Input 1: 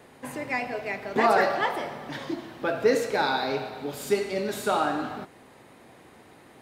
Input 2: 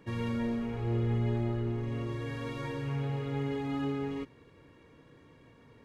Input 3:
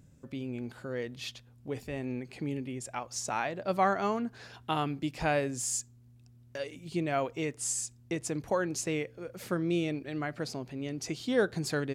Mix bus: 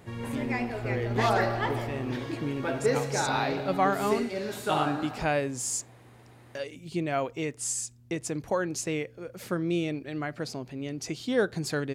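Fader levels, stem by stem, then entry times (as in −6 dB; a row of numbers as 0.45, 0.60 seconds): −4.5, −2.5, +1.5 decibels; 0.00, 0.00, 0.00 seconds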